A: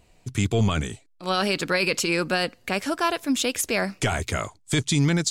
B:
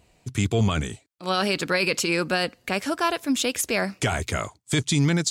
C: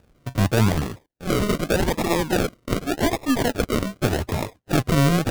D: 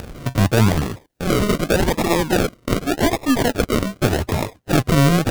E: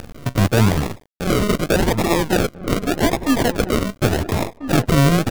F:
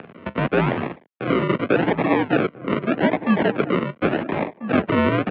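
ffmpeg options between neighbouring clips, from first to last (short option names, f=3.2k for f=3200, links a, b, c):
-af "highpass=41"
-af "aeval=exprs='if(lt(val(0),0),0.708*val(0),val(0))':c=same,acrusher=samples=41:mix=1:aa=0.000001:lfo=1:lforange=24.6:lforate=0.85,volume=4dB"
-af "acompressor=mode=upward:threshold=-20dB:ratio=2.5,volume=3.5dB"
-filter_complex "[0:a]acrusher=bits=5:dc=4:mix=0:aa=0.000001,asplit=2[a][b];[b]adelay=1341,volume=-12dB,highshelf=f=4k:g=-30.2[c];[a][c]amix=inputs=2:normalize=0"
-af "highpass=f=220:t=q:w=0.5412,highpass=f=220:t=q:w=1.307,lowpass=f=2.9k:t=q:w=0.5176,lowpass=f=2.9k:t=q:w=0.7071,lowpass=f=2.9k:t=q:w=1.932,afreqshift=-52"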